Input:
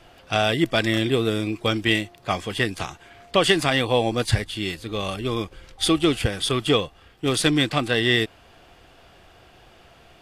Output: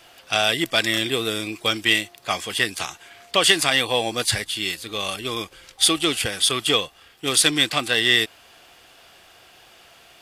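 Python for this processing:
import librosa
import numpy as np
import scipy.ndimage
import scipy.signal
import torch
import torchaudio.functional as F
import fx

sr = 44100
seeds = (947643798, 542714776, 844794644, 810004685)

p1 = 10.0 ** (-12.0 / 20.0) * np.tanh(x / 10.0 ** (-12.0 / 20.0))
p2 = x + (p1 * 10.0 ** (-10.0 / 20.0))
p3 = fx.tilt_eq(p2, sr, slope=3.0)
y = p3 * 10.0 ** (-2.0 / 20.0)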